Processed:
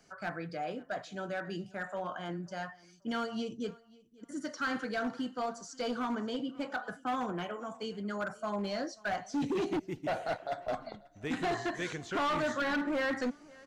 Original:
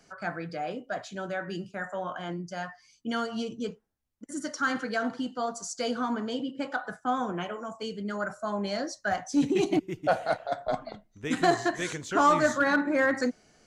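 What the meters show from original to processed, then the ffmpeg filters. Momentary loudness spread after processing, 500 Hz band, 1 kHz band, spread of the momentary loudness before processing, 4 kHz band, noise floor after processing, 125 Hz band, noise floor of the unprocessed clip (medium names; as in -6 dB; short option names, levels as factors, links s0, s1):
9 LU, -6.0 dB, -6.5 dB, 12 LU, -4.5 dB, -60 dBFS, -4.5 dB, -66 dBFS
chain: -filter_complex "[0:a]volume=17.8,asoftclip=hard,volume=0.0562,acrossover=split=5400[s0][s1];[s1]acompressor=threshold=0.00178:ratio=4:attack=1:release=60[s2];[s0][s2]amix=inputs=2:normalize=0,aecho=1:1:537|1074:0.0668|0.0187,volume=0.668"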